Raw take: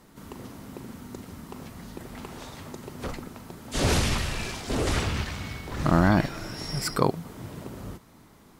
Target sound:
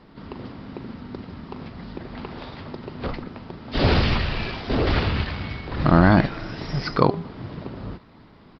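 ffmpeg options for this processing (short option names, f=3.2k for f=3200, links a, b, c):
-filter_complex "[0:a]asplit=3[a][b][c];[a]afade=t=out:st=5.63:d=0.02[d];[b]bandreject=f=201.3:t=h:w=4,bandreject=f=402.6:t=h:w=4,bandreject=f=603.9:t=h:w=4,bandreject=f=805.2:t=h:w=4,bandreject=f=1.0065k:t=h:w=4,bandreject=f=1.2078k:t=h:w=4,bandreject=f=1.4091k:t=h:w=4,afade=t=in:st=5.63:d=0.02,afade=t=out:st=7.25:d=0.02[e];[c]afade=t=in:st=7.25:d=0.02[f];[d][e][f]amix=inputs=3:normalize=0,aresample=11025,aresample=44100,volume=5.5dB" -ar 48000 -c:a libopus -b:a 32k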